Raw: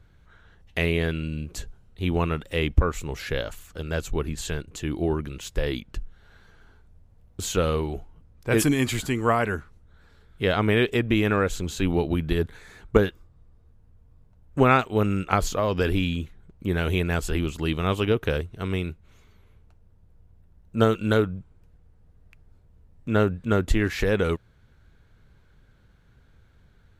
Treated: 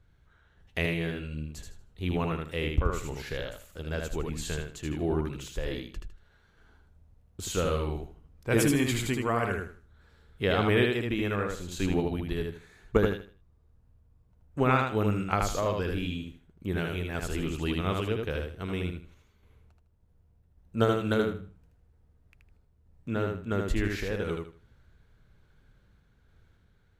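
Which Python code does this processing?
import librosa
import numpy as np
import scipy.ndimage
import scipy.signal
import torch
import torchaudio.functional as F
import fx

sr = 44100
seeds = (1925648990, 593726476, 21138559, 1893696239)

p1 = fx.tremolo_random(x, sr, seeds[0], hz=3.5, depth_pct=55)
p2 = p1 + fx.echo_feedback(p1, sr, ms=78, feedback_pct=26, wet_db=-3.5, dry=0)
y = p2 * 10.0 ** (-4.0 / 20.0)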